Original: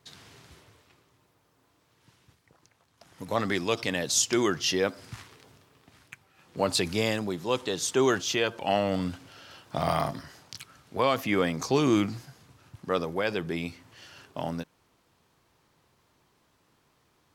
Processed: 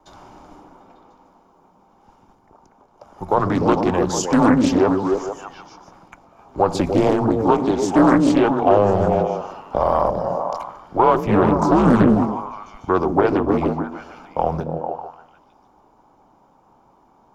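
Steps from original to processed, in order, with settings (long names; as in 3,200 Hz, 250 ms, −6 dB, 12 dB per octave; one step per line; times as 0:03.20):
octave-band graphic EQ 1,000/2,000/4,000 Hz +12/−10/−11 dB
brickwall limiter −13 dBFS, peak gain reduction 7 dB
echo through a band-pass that steps 149 ms, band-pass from 290 Hz, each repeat 0.7 octaves, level 0 dB
frequency shifter −95 Hz
convolution reverb RT60 1.1 s, pre-delay 3 ms, DRR 19 dB
highs frequency-modulated by the lows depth 0.6 ms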